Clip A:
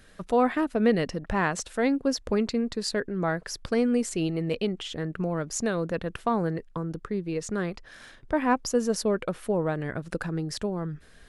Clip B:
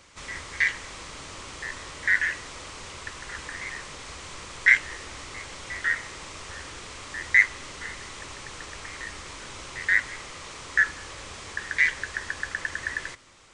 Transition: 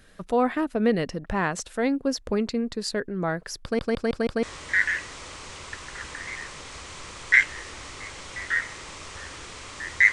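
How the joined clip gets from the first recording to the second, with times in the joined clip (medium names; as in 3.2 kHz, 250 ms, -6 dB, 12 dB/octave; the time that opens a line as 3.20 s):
clip A
3.63 s: stutter in place 0.16 s, 5 plays
4.43 s: go over to clip B from 1.77 s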